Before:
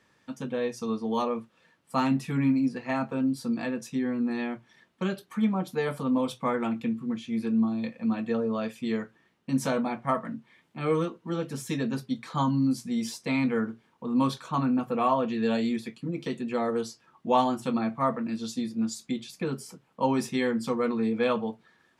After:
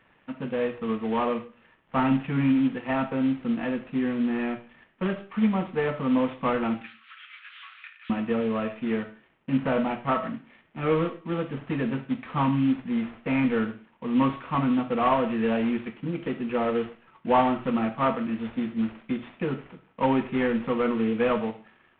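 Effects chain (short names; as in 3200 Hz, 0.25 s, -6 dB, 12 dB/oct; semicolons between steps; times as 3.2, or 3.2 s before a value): CVSD 16 kbps; 6.81–8.1 elliptic high-pass 1300 Hz, stop band 60 dB; reverb RT60 0.35 s, pre-delay 10 ms, DRR 10 dB; gain +2.5 dB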